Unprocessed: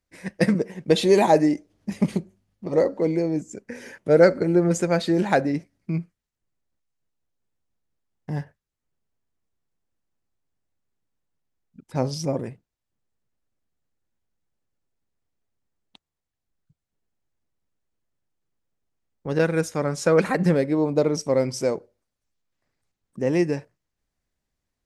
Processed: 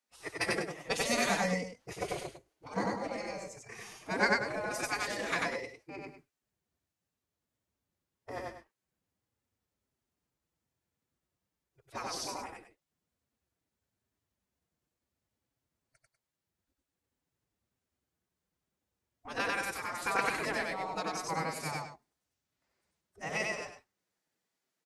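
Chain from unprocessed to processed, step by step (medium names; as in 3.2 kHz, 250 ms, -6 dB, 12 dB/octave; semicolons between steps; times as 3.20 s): spectral gate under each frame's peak -15 dB weak; loudspeakers at several distances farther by 32 m -1 dB, 67 m -11 dB; formant-preserving pitch shift +3.5 st; trim -1.5 dB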